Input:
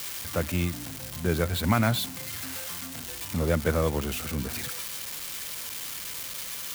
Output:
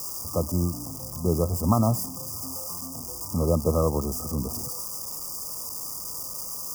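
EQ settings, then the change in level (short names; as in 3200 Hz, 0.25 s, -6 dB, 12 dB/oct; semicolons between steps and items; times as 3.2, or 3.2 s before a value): brick-wall FIR band-stop 1300–4700 Hz; +2.5 dB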